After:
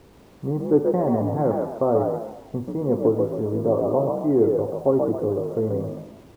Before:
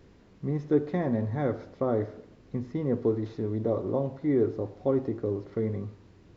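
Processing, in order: FFT filter 220 Hz 0 dB, 930 Hz +7 dB, 3.1 kHz -27 dB; word length cut 10-bit, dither none; on a send: frequency-shifting echo 134 ms, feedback 35%, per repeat +54 Hz, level -4.5 dB; on the sum: trim +3 dB

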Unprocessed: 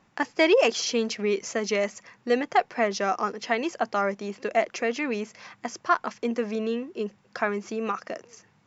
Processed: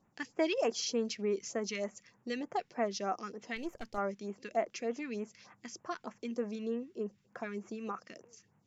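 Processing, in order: 3.56–3.98 s: partial rectifier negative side -7 dB; phase shifter stages 2, 3.3 Hz, lowest notch 650–4400 Hz; trim -8 dB

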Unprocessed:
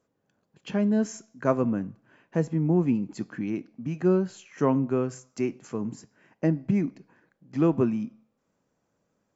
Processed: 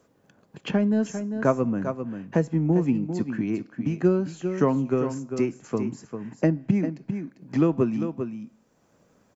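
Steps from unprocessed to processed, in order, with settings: transient shaper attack +5 dB, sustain 0 dB; on a send: delay 397 ms -11 dB; on the sum: three bands compressed up and down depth 40%

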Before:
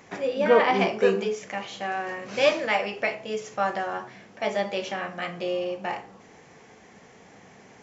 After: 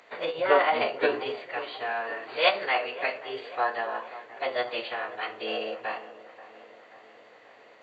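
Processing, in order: formant-preserving pitch shift -8.5 st; high-pass 480 Hz 12 dB/octave; feedback echo behind a low-pass 533 ms, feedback 60%, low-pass 1.9 kHz, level -16 dB

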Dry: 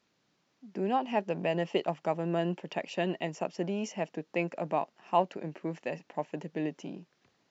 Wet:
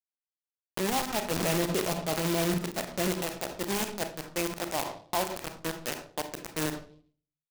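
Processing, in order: 1.31–3.08 s: bass shelf 360 Hz +8.5 dB; feedback delay 92 ms, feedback 25%, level -17 dB; bit crusher 5-bit; transient shaper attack -6 dB, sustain +4 dB; treble shelf 5.8 kHz +12 dB; on a send at -9 dB: reverberation RT60 0.45 s, pre-delay 26 ms; on the sum: peak limiter -21.5 dBFS, peak gain reduction 11 dB; delay time shaken by noise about 3.1 kHz, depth 0.054 ms; trim +6.5 dB

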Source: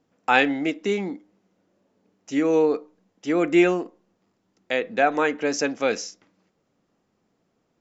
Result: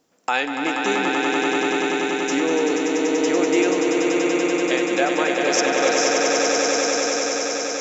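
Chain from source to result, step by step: tone controls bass -9 dB, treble +10 dB; compression 2:1, threshold -30 dBFS, peak gain reduction 10 dB; on a send: echo with a slow build-up 96 ms, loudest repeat 8, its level -5 dB; on the sum: trim +5 dB

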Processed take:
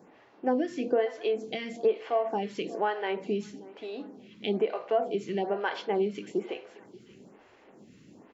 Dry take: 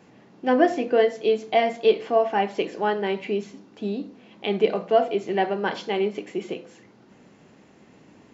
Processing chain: compression 4:1, threshold -22 dBFS, peak gain reduction 9 dB; on a send: feedback delay 582 ms, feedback 33%, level -19.5 dB; on the sum: lamp-driven phase shifter 1.1 Hz

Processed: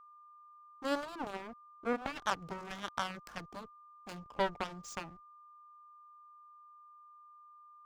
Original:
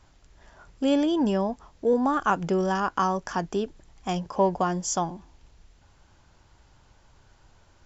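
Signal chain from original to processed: hysteresis with a dead band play -31.5 dBFS; Chebyshev shaper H 3 -14 dB, 7 -18 dB, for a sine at -10 dBFS; whistle 1.2 kHz -48 dBFS; trim -7 dB

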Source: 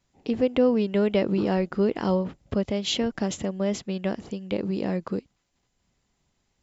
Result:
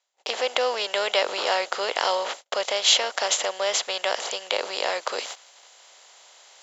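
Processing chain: spectral levelling over time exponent 0.6; gate -37 dBFS, range -38 dB; high-pass 670 Hz 24 dB/octave; treble shelf 5.6 kHz +7.5 dB; reverse; upward compressor, threshold -31 dBFS; reverse; trim +6 dB

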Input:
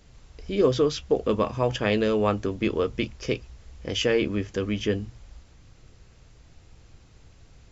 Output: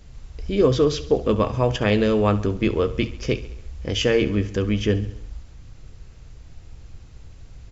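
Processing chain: bass shelf 120 Hz +9.5 dB; on a send: feedback delay 68 ms, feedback 57%, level -16 dB; on the sum: trim +2.5 dB

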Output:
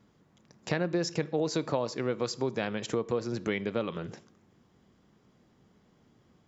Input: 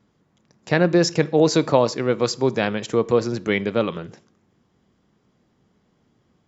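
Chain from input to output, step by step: compression 3:1, threshold -30 dBFS, peak gain reduction 14 dB

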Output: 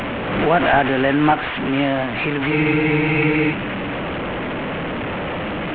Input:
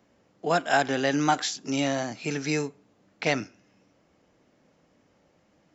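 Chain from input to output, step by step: one-bit delta coder 16 kbps, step -26 dBFS; spectral freeze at 2.54 s, 0.97 s; swell ahead of each attack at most 41 dB/s; trim +7.5 dB

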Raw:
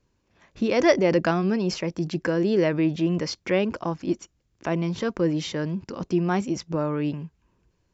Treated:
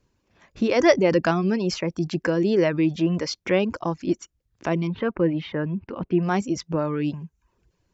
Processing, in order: 4.87–6.23 s: low-pass 2.9 kHz 24 dB/octave; reverb removal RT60 0.51 s; trim +2 dB

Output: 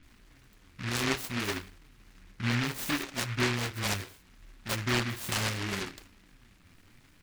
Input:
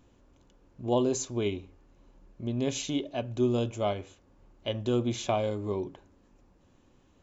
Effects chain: low-pass 3.7 kHz 6 dB/octave; peaking EQ 590 Hz -8 dB 0.24 oct; compression 4:1, threshold -32 dBFS, peak gain reduction 9.5 dB; flange 0.67 Hz, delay 2.6 ms, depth 9.2 ms, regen +38%; bands offset in time lows, highs 30 ms, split 360 Hz; delay time shaken by noise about 1.8 kHz, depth 0.46 ms; trim +8.5 dB

